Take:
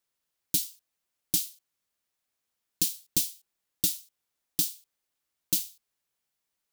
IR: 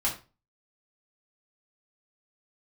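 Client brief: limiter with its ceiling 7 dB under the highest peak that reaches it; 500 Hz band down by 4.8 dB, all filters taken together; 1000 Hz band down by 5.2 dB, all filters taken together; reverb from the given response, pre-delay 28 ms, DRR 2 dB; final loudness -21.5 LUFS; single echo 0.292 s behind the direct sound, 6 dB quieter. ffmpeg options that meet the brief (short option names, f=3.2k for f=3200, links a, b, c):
-filter_complex "[0:a]equalizer=f=500:t=o:g=-7.5,equalizer=f=1k:t=o:g=-4,alimiter=limit=-16.5dB:level=0:latency=1,aecho=1:1:292:0.501,asplit=2[a][b];[1:a]atrim=start_sample=2205,adelay=28[c];[b][c]afir=irnorm=-1:irlink=0,volume=-10dB[d];[a][d]amix=inputs=2:normalize=0,volume=10.5dB"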